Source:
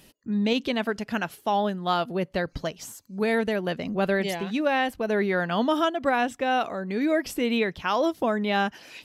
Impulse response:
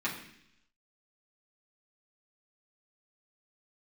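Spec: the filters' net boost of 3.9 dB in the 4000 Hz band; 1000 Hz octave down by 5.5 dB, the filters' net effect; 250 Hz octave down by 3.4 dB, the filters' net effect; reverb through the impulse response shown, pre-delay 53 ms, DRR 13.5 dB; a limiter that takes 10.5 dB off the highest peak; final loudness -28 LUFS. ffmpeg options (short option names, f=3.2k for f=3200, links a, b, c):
-filter_complex "[0:a]equalizer=f=250:t=o:g=-4,equalizer=f=1k:t=o:g=-8,equalizer=f=4k:t=o:g=6,alimiter=limit=-21.5dB:level=0:latency=1,asplit=2[a][b];[1:a]atrim=start_sample=2205,adelay=53[c];[b][c]afir=irnorm=-1:irlink=0,volume=-20.5dB[d];[a][d]amix=inputs=2:normalize=0,volume=3.5dB"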